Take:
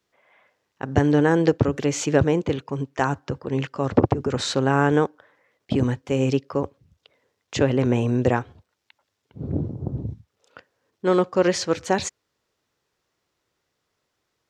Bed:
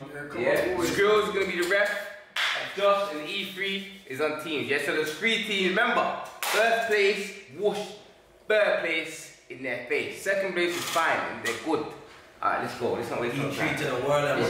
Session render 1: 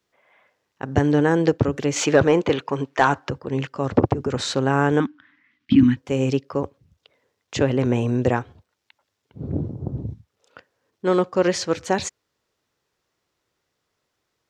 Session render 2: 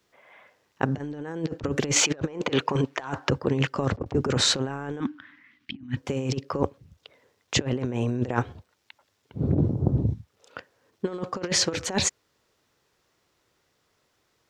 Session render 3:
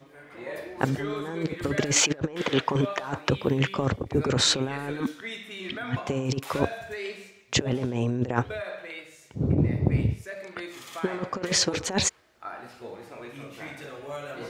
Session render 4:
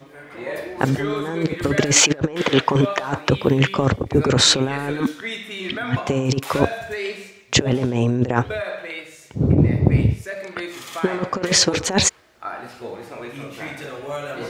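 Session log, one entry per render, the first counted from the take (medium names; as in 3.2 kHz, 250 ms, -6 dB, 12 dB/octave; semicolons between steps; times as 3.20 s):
1.96–3.30 s: overdrive pedal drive 16 dB, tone 3.1 kHz, clips at -2.5 dBFS; 5.00–5.97 s: FFT filter 160 Hz 0 dB, 280 Hz +12 dB, 470 Hz -26 dB, 670 Hz -19 dB, 1.2 kHz -2 dB, 2 kHz +5 dB, 3.1 kHz +5 dB, 4.5 kHz -1 dB, 9.7 kHz -16 dB
compressor with a negative ratio -25 dBFS, ratio -0.5
add bed -12.5 dB
trim +7.5 dB; peak limiter -1 dBFS, peak gain reduction 3 dB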